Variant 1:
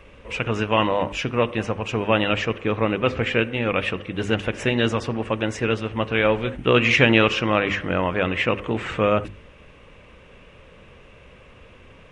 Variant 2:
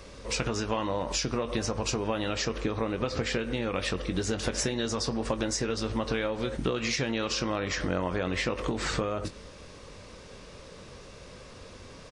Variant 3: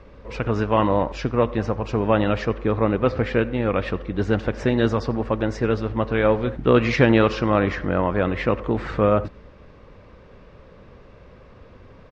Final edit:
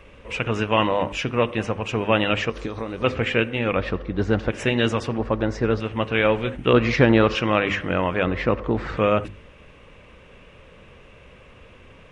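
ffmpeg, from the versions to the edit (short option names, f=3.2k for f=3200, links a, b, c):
-filter_complex "[2:a]asplit=4[a][b][c][d];[0:a]asplit=6[e][f][g][h][i][j];[e]atrim=end=2.502[k];[1:a]atrim=start=2.498:end=3.042[l];[f]atrim=start=3.038:end=3.762[m];[a]atrim=start=3.758:end=4.502[n];[g]atrim=start=4.498:end=5.182[o];[b]atrim=start=5.178:end=5.802[p];[h]atrim=start=5.798:end=6.732[q];[c]atrim=start=6.728:end=7.352[r];[i]atrim=start=7.348:end=8.252[s];[d]atrim=start=8.248:end=8.972[t];[j]atrim=start=8.968[u];[k][l]acrossfade=d=0.004:c1=hsin:c2=hsin[v];[v][m]acrossfade=d=0.004:c1=hsin:c2=hsin[w];[w][n]acrossfade=d=0.004:c1=hsin:c2=hsin[x];[x][o]acrossfade=d=0.004:c1=hsin:c2=hsin[y];[y][p]acrossfade=d=0.004:c1=hsin:c2=hsin[z];[z][q]acrossfade=d=0.004:c1=hsin:c2=hsin[aa];[aa][r]acrossfade=d=0.004:c1=hsin:c2=hsin[ab];[ab][s]acrossfade=d=0.004:c1=hsin:c2=hsin[ac];[ac][t]acrossfade=d=0.004:c1=hsin:c2=hsin[ad];[ad][u]acrossfade=d=0.004:c1=hsin:c2=hsin"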